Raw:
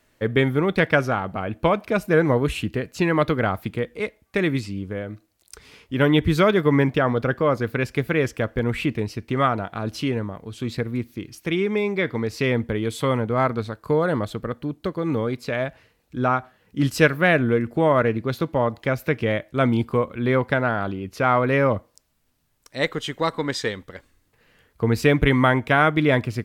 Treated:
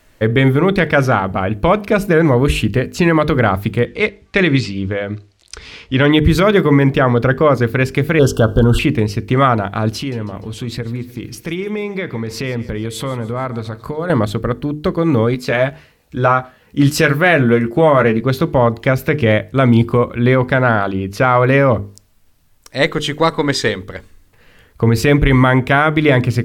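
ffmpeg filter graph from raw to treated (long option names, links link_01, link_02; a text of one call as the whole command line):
ffmpeg -i in.wav -filter_complex "[0:a]asettb=1/sr,asplit=3[link_01][link_02][link_03];[link_01]atrim=end=3.864[link_04];[link_02]atrim=start=3.86:end=6.12,asetpts=PTS-STARTPTS,afade=type=in:duration=0.004:curve=qsin,afade=type=out:start_time=2.256:duration=0.004:curve=qsin,lowpass=6300,equalizer=frequency=3600:width=0.57:gain=5.5[link_05];[link_03]atrim=start=6.116[link_06];[link_04][link_05]acrossfade=duration=0.004:curve1=hsin:curve2=qsin[link_07];[link_07][link_06]acrossfade=duration=0.004:curve1=qsin:curve2=hsin,asettb=1/sr,asplit=3[link_08][link_09][link_10];[link_08]atrim=end=8.194[link_11];[link_09]atrim=start=8.19:end=8.79,asetpts=PTS-STARTPTS,afade=type=in:duration=0.004:curve=qsin,afade=type=out:start_time=0.596:duration=0.004:curve=qsin,asuperstop=centerf=2100:order=20:qfactor=1.8,acontrast=71[link_12];[link_10]atrim=start=8.786[link_13];[link_11][link_12]acrossfade=duration=0.004:curve1=hsin:curve2=qsin[link_14];[link_14][link_13]acrossfade=duration=0.004:curve1=qsin:curve2=hsin,asettb=1/sr,asplit=3[link_15][link_16][link_17];[link_15]atrim=end=9.974[link_18];[link_16]atrim=start=9.97:end=14.1,asetpts=PTS-STARTPTS,afade=type=in:duration=0.004:curve=qsin,afade=type=out:start_time=4.126:duration=0.004:curve=qsin,acompressor=threshold=-32dB:ratio=2.5:attack=3.2:release=140:knee=1:detection=peak,aecho=1:1:148|296|444|592:0.126|0.0667|0.0354|0.0187,atrim=end_sample=182133[link_19];[link_17]atrim=start=14.096[link_20];[link_18][link_19]acrossfade=duration=0.004:curve1=hsin:curve2=qsin[link_21];[link_21][link_20]acrossfade=duration=0.004:curve1=qsin:curve2=hsin,asettb=1/sr,asplit=3[link_22][link_23][link_24];[link_22]atrim=end=15.344[link_25];[link_23]atrim=start=15.34:end=18.21,asetpts=PTS-STARTPTS,afade=type=in:duration=0.004:curve=qsin,afade=type=out:start_time=2.866:duration=0.004:curve=qsin,lowshelf=frequency=140:gain=-5.5,asplit=2[link_26][link_27];[link_27]adelay=14,volume=-7.5dB[link_28];[link_26][link_28]amix=inputs=2:normalize=0,atrim=end_sample=126567[link_29];[link_24]atrim=start=18.206[link_30];[link_25][link_29]acrossfade=duration=0.004:curve1=hsin:curve2=qsin[link_31];[link_31][link_30]acrossfade=duration=0.004:curve1=qsin:curve2=hsin,lowshelf=frequency=71:gain=10.5,bandreject=frequency=50:width_type=h:width=6,bandreject=frequency=100:width_type=h:width=6,bandreject=frequency=150:width_type=h:width=6,bandreject=frequency=200:width_type=h:width=6,bandreject=frequency=250:width_type=h:width=6,bandreject=frequency=300:width_type=h:width=6,bandreject=frequency=350:width_type=h:width=6,bandreject=frequency=400:width_type=h:width=6,bandreject=frequency=450:width_type=h:width=6,alimiter=level_in=10.5dB:limit=-1dB:release=50:level=0:latency=1,volume=-1dB" out.wav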